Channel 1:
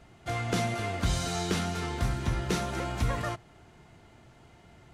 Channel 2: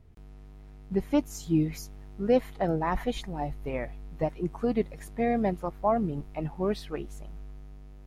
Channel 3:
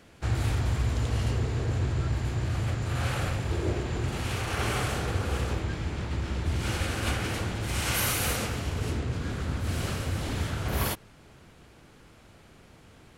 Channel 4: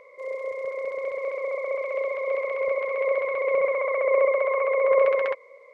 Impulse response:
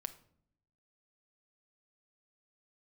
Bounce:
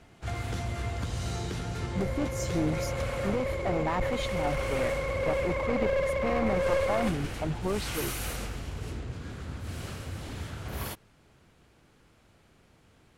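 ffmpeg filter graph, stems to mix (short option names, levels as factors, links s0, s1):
-filter_complex "[0:a]acompressor=threshold=0.0224:ratio=6,volume=0.841[s0];[1:a]lowpass=11000,alimiter=limit=0.075:level=0:latency=1,adelay=1050,volume=1.41[s1];[2:a]volume=0.422[s2];[3:a]highpass=f=260:w=0.5412,highpass=f=260:w=1.3066,adelay=1750,volume=0.531[s3];[s0][s1][s2][s3]amix=inputs=4:normalize=0,aeval=exprs='clip(val(0),-1,0.0473)':c=same"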